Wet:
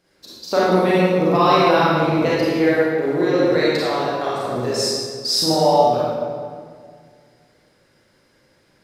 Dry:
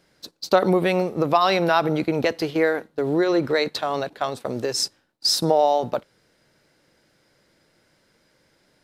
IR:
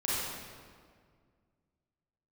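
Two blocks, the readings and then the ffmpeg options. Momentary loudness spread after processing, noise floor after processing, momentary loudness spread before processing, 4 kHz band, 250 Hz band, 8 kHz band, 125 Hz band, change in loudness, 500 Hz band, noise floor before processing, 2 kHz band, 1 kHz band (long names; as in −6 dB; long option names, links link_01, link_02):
9 LU, −59 dBFS, 9 LU, +3.0 dB, +5.0 dB, +2.5 dB, +5.5 dB, +4.0 dB, +4.5 dB, −64 dBFS, +3.5 dB, +4.5 dB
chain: -filter_complex "[1:a]atrim=start_sample=2205[link_01];[0:a][link_01]afir=irnorm=-1:irlink=0,volume=-4dB"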